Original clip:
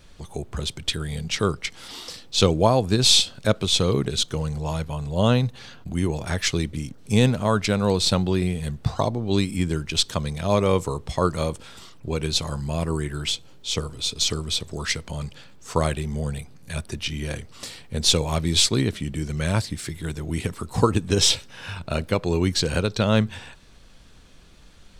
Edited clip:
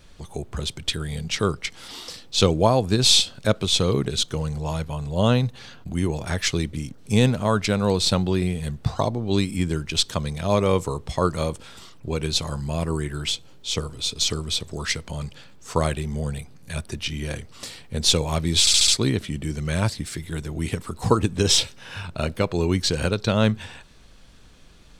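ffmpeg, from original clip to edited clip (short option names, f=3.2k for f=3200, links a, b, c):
-filter_complex "[0:a]asplit=5[a][b][c][d][e];[a]atrim=end=18.672[f];[b]atrim=start=18.598:end=18.672[g];[c]atrim=start=18.598:end=18.672[h];[d]atrim=start=18.598:end=18.672[i];[e]atrim=start=18.598[j];[f][g]acrossfade=d=0.004:c1=hsin:c2=hsin[k];[k][h]acrossfade=d=0.004:c1=hsin:c2=hsin[l];[l][i]acrossfade=d=0.004:c1=hsin:c2=hsin[m];[m][j]acrossfade=d=0.004:c1=hsin:c2=hsin"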